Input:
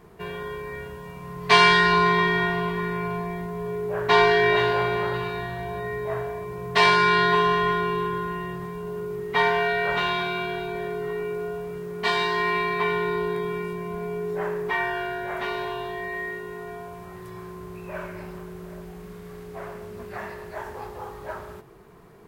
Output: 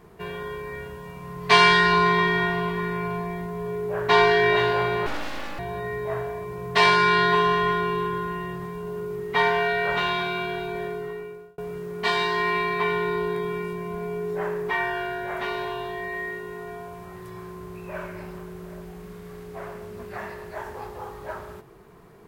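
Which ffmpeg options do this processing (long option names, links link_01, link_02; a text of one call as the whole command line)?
ffmpeg -i in.wav -filter_complex "[0:a]asettb=1/sr,asplit=3[link_01][link_02][link_03];[link_01]atrim=end=5.064[link_04];[link_02]atrim=start=5.06:end=5.59,asetpts=PTS-STARTPTS,afade=type=in:duration=0.004:curve=qsin,afade=type=out:start_time=0.526:duration=0.004:curve=qsin,aeval=exprs='abs(val(0))':channel_layout=same[link_05];[link_03]atrim=start=5.586[link_06];[link_04][link_05]acrossfade=duration=0.004:curve1=hsin:curve2=qsin[link_07];[link_07][link_06]acrossfade=duration=0.004:curve1=qsin:curve2=hsin,asplit=2[link_08][link_09];[link_08]atrim=end=11.58,asetpts=PTS-STARTPTS,afade=type=out:start_time=10.83:duration=0.75[link_10];[link_09]atrim=start=11.58,asetpts=PTS-STARTPTS,afade=type=in:duration=0.004:curve=hsin[link_11];[link_10][link_11]concat=n=2:v=0:a=1" out.wav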